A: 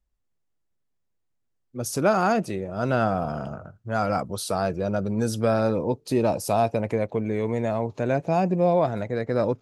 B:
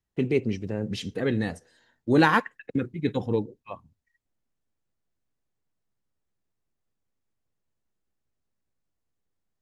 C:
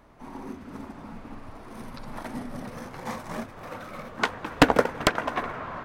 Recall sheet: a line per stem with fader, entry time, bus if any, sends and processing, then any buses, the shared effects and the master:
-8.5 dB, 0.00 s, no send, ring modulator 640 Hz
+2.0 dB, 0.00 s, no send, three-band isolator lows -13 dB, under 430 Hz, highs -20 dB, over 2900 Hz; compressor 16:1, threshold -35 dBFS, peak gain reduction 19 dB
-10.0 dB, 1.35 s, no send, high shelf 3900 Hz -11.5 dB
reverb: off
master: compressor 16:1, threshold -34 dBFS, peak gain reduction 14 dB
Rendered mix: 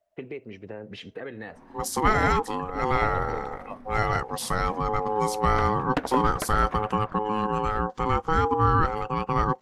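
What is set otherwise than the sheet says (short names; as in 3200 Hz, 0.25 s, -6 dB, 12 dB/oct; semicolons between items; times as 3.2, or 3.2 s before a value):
stem A -8.5 dB -> +2.5 dB; master: missing compressor 16:1, threshold -34 dBFS, peak gain reduction 14 dB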